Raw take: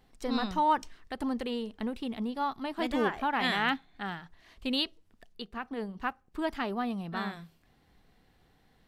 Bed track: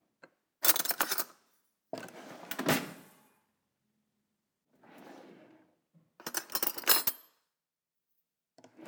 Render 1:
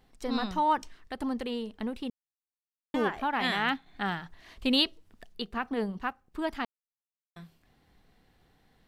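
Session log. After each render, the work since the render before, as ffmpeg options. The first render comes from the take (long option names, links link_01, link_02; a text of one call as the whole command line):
ffmpeg -i in.wav -filter_complex "[0:a]asettb=1/sr,asplit=3[link_01][link_02][link_03];[link_01]atrim=end=3.864[link_04];[link_02]atrim=start=3.86:end=5.99,asetpts=PTS-STARTPTS,afade=type=in:duration=0.004:curve=qsin,afade=type=out:start_time=2.126:duration=0.004:curve=qsin,acontrast=34[link_05];[link_03]atrim=start=5.986[link_06];[link_04][link_05]acrossfade=duration=0.004:curve1=hsin:curve2=qsin[link_07];[link_07][link_06]acrossfade=duration=0.004:curve1=qsin:curve2=hsin,asplit=5[link_08][link_09][link_10][link_11][link_12];[link_08]atrim=end=2.1,asetpts=PTS-STARTPTS,afade=type=out:start_time=2.096:duration=0.004:curve=hsin[link_13];[link_09]atrim=start=2.1:end=2.94,asetpts=PTS-STARTPTS,volume=0[link_14];[link_10]atrim=start=2.94:end=6.65,asetpts=PTS-STARTPTS,afade=type=in:duration=0.004:curve=hsin,afade=type=out:start_time=3.706:duration=0.004:curve=hsin[link_15];[link_11]atrim=start=6.65:end=7.36,asetpts=PTS-STARTPTS,volume=0[link_16];[link_12]atrim=start=7.36,asetpts=PTS-STARTPTS,afade=type=in:duration=0.004:curve=hsin[link_17];[link_13][link_14][link_15][link_16][link_17]concat=n=5:v=0:a=1" out.wav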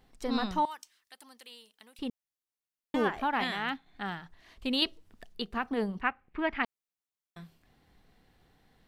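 ffmpeg -i in.wav -filter_complex "[0:a]asettb=1/sr,asplit=3[link_01][link_02][link_03];[link_01]atrim=end=0.654[link_04];[link_02]atrim=start=0.65:end=1.99,asetpts=PTS-STARTPTS,afade=type=in:duration=0.004:curve=qsin,afade=type=out:start_time=1.336:duration=0.004:curve=qsin,aderivative[link_05];[link_03]atrim=start=1.986[link_06];[link_04][link_05]acrossfade=duration=0.004:curve1=hsin:curve2=qsin[link_07];[link_07][link_06]acrossfade=duration=0.004:curve1=qsin:curve2=hsin,asplit=3[link_08][link_09][link_10];[link_08]afade=type=out:start_time=6:duration=0.02[link_11];[link_09]lowpass=frequency=2300:width_type=q:width=3.4,afade=type=in:start_time=6:duration=0.02,afade=type=out:start_time=6.62:duration=0.02[link_12];[link_10]afade=type=in:start_time=6.62:duration=0.02[link_13];[link_11][link_12][link_13]amix=inputs=3:normalize=0,asplit=3[link_14][link_15][link_16];[link_14]atrim=end=3.442[link_17];[link_15]atrim=start=3.438:end=4.822,asetpts=PTS-STARTPTS,volume=-5dB[link_18];[link_16]atrim=start=4.818[link_19];[link_17][link_18]acrossfade=duration=0.004:curve1=hsin:curve2=hsin[link_20];[link_20][link_19]acrossfade=duration=0.004:curve1=hsin:curve2=hsin" out.wav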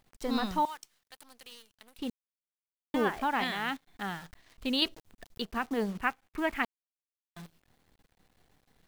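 ffmpeg -i in.wav -af "acrusher=bits=9:dc=4:mix=0:aa=0.000001" out.wav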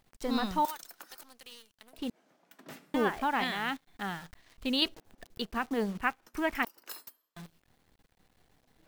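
ffmpeg -i in.wav -i bed.wav -filter_complex "[1:a]volume=-19.5dB[link_01];[0:a][link_01]amix=inputs=2:normalize=0" out.wav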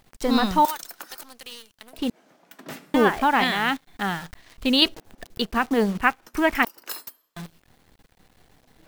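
ffmpeg -i in.wav -af "volume=10dB" out.wav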